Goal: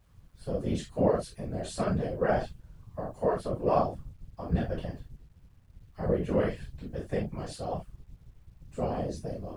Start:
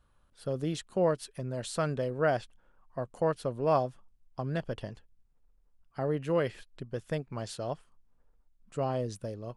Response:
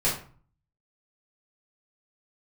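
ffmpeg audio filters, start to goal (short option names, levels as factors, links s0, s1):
-filter_complex "[1:a]atrim=start_sample=2205,atrim=end_sample=3969[s0];[0:a][s0]afir=irnorm=-1:irlink=0,afftfilt=real='hypot(re,im)*cos(2*PI*random(0))':imag='hypot(re,im)*sin(2*PI*random(1))':win_size=512:overlap=0.75,acrusher=bits=10:mix=0:aa=0.000001,volume=0.531"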